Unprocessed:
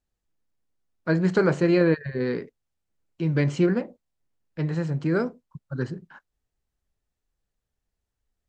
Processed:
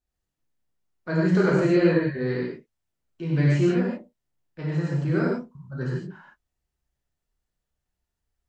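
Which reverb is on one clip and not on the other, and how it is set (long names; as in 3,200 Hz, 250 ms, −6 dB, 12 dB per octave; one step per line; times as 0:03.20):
reverb whose tail is shaped and stops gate 180 ms flat, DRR −6 dB
level −6.5 dB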